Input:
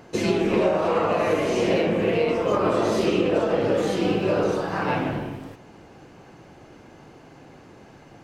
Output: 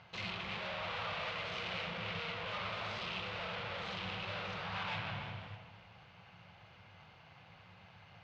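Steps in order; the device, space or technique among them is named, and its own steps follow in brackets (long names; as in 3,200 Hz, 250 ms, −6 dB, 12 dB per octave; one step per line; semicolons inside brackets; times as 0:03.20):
scooped metal amplifier (tube saturation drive 33 dB, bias 0.75; loudspeaker in its box 83–3,700 Hz, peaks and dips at 100 Hz +9 dB, 180 Hz +7 dB, 410 Hz −4 dB, 1,700 Hz −5 dB; guitar amp tone stack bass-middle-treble 10-0-10)
reverb whose tail is shaped and stops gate 380 ms rising, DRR 9 dB
level +5.5 dB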